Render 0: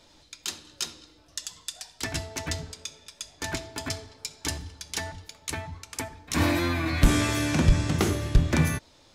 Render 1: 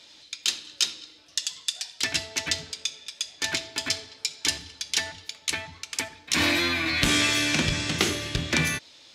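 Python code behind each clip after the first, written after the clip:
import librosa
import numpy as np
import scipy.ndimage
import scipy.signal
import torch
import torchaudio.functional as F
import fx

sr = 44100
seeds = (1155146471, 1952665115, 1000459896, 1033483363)

y = fx.weighting(x, sr, curve='D')
y = y * librosa.db_to_amplitude(-1.5)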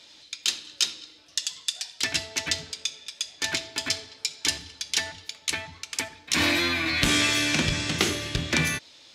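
y = x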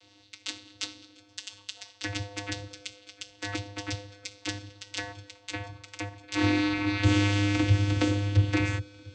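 y = fx.vocoder(x, sr, bands=16, carrier='square', carrier_hz=101.0)
y = fx.echo_feedback(y, sr, ms=697, feedback_pct=57, wet_db=-23)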